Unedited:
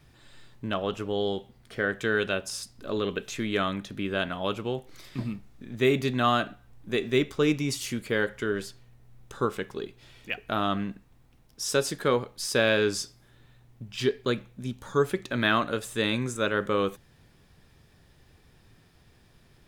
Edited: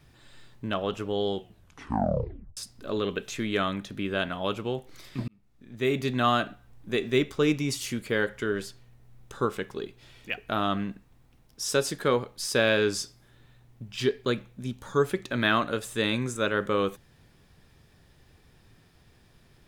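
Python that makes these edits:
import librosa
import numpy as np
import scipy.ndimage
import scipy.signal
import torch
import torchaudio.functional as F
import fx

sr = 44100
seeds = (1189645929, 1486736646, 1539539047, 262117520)

y = fx.edit(x, sr, fx.tape_stop(start_s=1.36, length_s=1.21),
    fx.fade_in_span(start_s=5.28, length_s=0.89), tone=tone)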